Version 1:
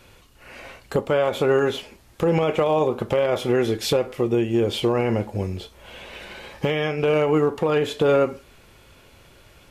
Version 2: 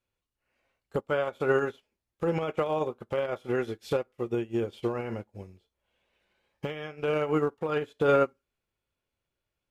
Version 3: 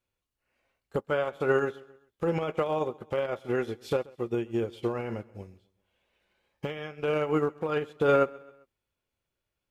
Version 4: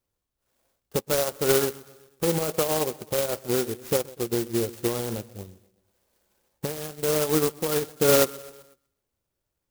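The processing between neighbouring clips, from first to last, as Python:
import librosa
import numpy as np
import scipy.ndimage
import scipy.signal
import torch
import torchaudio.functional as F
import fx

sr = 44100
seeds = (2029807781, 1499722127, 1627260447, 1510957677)

y1 = fx.dynamic_eq(x, sr, hz=1400.0, q=3.6, threshold_db=-44.0, ratio=4.0, max_db=6)
y1 = fx.upward_expand(y1, sr, threshold_db=-36.0, expansion=2.5)
y1 = F.gain(torch.from_numpy(y1), -4.0).numpy()
y2 = fx.echo_feedback(y1, sr, ms=132, feedback_pct=47, wet_db=-23.0)
y3 = fx.echo_feedback(y2, sr, ms=124, feedback_pct=57, wet_db=-23)
y3 = fx.clock_jitter(y3, sr, seeds[0], jitter_ms=0.14)
y3 = F.gain(torch.from_numpy(y3), 3.5).numpy()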